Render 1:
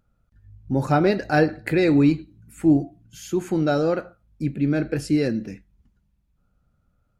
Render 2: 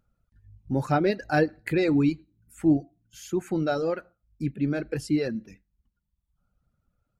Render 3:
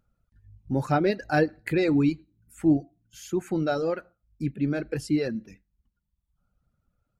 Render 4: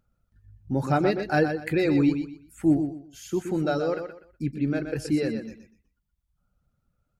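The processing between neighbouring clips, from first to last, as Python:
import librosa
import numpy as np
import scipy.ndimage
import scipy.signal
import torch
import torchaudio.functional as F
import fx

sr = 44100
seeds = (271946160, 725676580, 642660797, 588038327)

y1 = fx.dereverb_blind(x, sr, rt60_s=1.1)
y1 = y1 * 10.0 ** (-3.5 / 20.0)
y2 = y1
y3 = fx.echo_feedback(y2, sr, ms=123, feedback_pct=26, wet_db=-8.0)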